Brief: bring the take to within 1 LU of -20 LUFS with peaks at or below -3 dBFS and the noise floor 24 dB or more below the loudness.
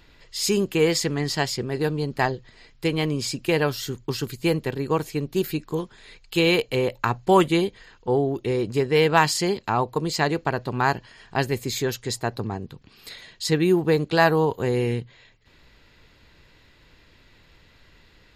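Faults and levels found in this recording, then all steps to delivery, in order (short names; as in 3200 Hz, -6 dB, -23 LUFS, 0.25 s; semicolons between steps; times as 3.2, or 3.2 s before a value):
loudness -23.5 LUFS; peak -4.0 dBFS; loudness target -20.0 LUFS
-> gain +3.5 dB; limiter -3 dBFS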